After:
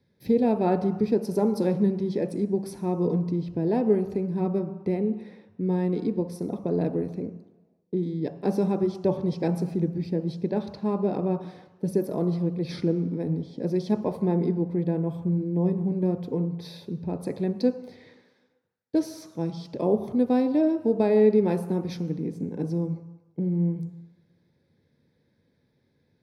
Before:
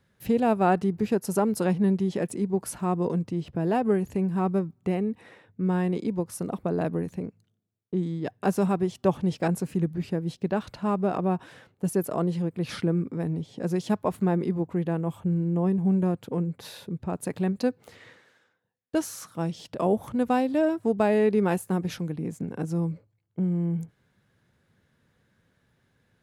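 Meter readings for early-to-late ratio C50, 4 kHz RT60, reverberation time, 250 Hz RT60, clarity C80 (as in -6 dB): 11.5 dB, 1.3 s, 1.1 s, 1.0 s, 13.5 dB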